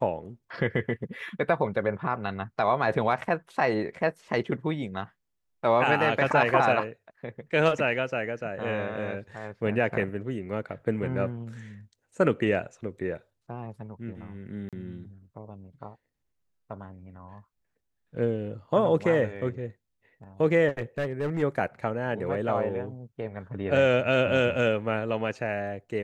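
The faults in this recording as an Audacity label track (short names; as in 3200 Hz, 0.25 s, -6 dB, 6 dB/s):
14.690000	14.730000	gap 37 ms
20.680000	21.430000	clipped -24 dBFS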